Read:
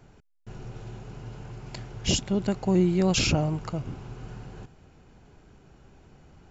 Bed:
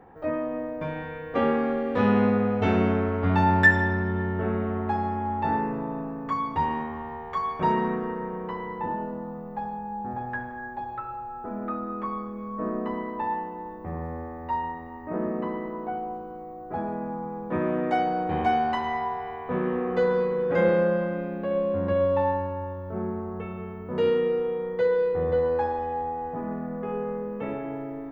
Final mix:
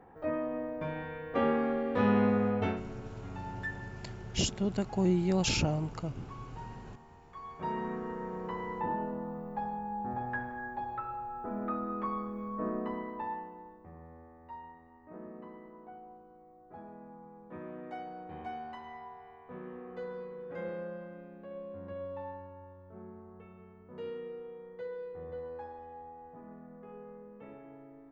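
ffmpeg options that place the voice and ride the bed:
ffmpeg -i stem1.wav -i stem2.wav -filter_complex "[0:a]adelay=2300,volume=-5.5dB[link_01];[1:a]volume=13dB,afade=type=out:start_time=2.58:duration=0.23:silence=0.149624,afade=type=in:start_time=7.3:duration=1.44:silence=0.125893,afade=type=out:start_time=12.4:duration=1.52:silence=0.188365[link_02];[link_01][link_02]amix=inputs=2:normalize=0" out.wav

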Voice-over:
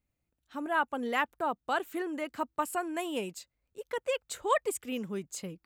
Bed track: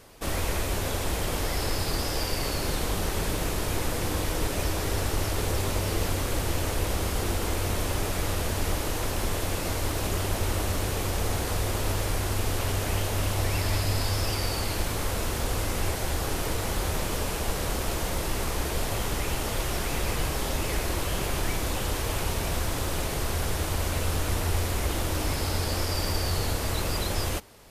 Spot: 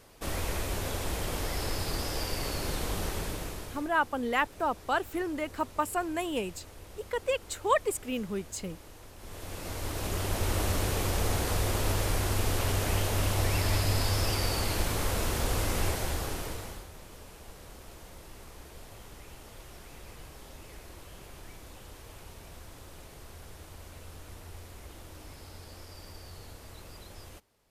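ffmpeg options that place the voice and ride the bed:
ffmpeg -i stem1.wav -i stem2.wav -filter_complex "[0:a]adelay=3200,volume=2dB[link_01];[1:a]volume=15.5dB,afade=type=out:start_time=3.05:duration=0.85:silence=0.149624,afade=type=in:start_time=9.18:duration=1.47:silence=0.1,afade=type=out:start_time=15.82:duration=1.05:silence=0.11885[link_02];[link_01][link_02]amix=inputs=2:normalize=0" out.wav

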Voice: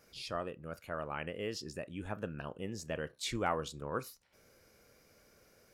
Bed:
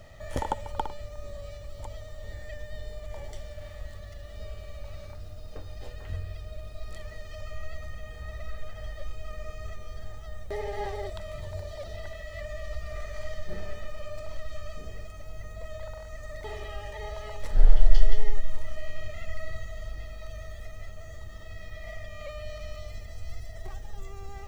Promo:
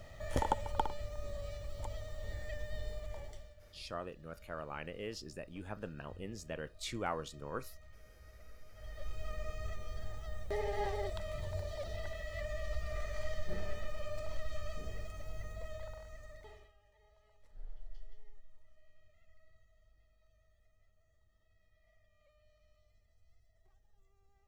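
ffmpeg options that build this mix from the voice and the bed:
ffmpeg -i stem1.wav -i stem2.wav -filter_complex "[0:a]adelay=3600,volume=-4dB[link_01];[1:a]volume=13dB,afade=type=out:start_time=2.89:duration=0.67:silence=0.158489,afade=type=in:start_time=8.7:duration=0.54:silence=0.16788,afade=type=out:start_time=15.31:duration=1.42:silence=0.0398107[link_02];[link_01][link_02]amix=inputs=2:normalize=0" out.wav

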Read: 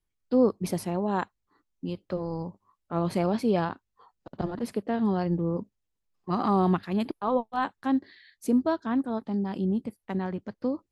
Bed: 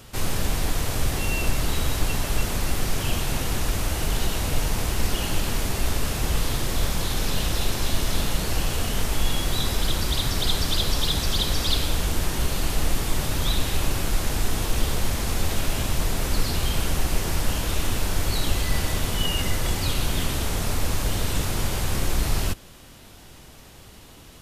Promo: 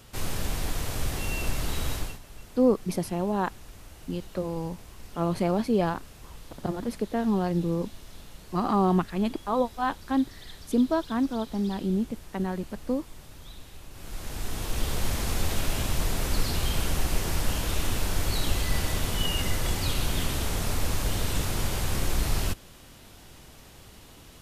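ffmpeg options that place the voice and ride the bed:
ffmpeg -i stem1.wav -i stem2.wav -filter_complex "[0:a]adelay=2250,volume=0.5dB[link_01];[1:a]volume=13.5dB,afade=type=out:start_time=1.93:duration=0.26:silence=0.149624,afade=type=in:start_time=13.91:duration=1.22:silence=0.112202[link_02];[link_01][link_02]amix=inputs=2:normalize=0" out.wav

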